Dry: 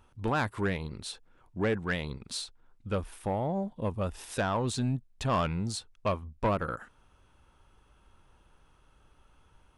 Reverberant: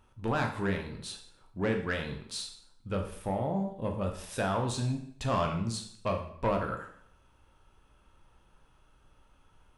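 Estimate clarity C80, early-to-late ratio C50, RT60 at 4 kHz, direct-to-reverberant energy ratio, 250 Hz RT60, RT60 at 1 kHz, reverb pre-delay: 10.5 dB, 8.0 dB, 0.60 s, 3.0 dB, 0.65 s, 0.65 s, 10 ms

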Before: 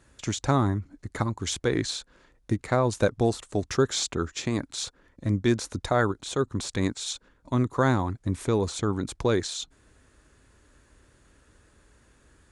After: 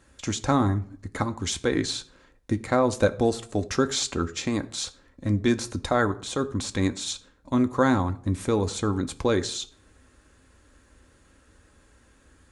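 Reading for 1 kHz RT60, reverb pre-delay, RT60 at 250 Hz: 0.50 s, 4 ms, 0.55 s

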